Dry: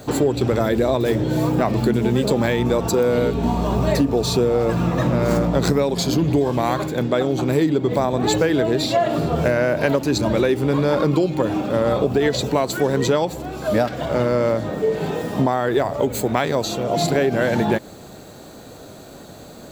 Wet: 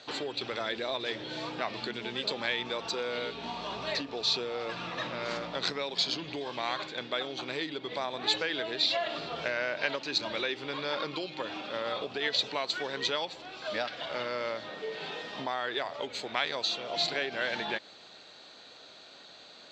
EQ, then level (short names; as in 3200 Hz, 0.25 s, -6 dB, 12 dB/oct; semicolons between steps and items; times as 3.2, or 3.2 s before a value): band-pass 3900 Hz, Q 1.5; air absorption 170 m; +5.0 dB